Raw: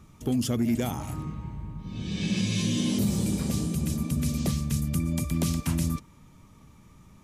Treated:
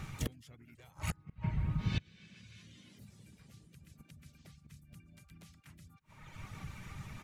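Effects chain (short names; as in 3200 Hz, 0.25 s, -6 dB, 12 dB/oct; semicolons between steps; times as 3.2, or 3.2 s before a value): reverb removal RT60 0.82 s; ten-band EQ 125 Hz +7 dB, 250 Hz -6 dB, 2000 Hz +11 dB, 4000 Hz +3 dB; in parallel at +1 dB: compressor 12:1, threshold -38 dBFS, peak gain reduction 18 dB; on the sum: flipped gate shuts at -21 dBFS, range -31 dB; harmoniser -7 st -8 dB, +3 st -10 dB; gain -1.5 dB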